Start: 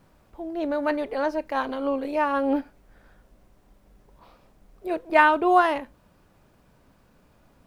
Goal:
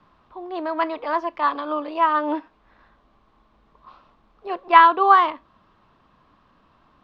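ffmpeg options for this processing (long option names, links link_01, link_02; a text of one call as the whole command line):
ffmpeg -i in.wav -filter_complex "[0:a]lowpass=frequency=3400:width_type=q:width=2.1,equalizer=frequency=1000:width=2.3:gain=14.5,acrossover=split=200|470|1600[link_01][link_02][link_03][link_04];[link_01]acompressor=threshold=-55dB:ratio=6[link_05];[link_02]aemphasis=mode=reproduction:type=bsi[link_06];[link_05][link_06][link_03][link_04]amix=inputs=4:normalize=0,asetrate=48069,aresample=44100,volume=-4dB" out.wav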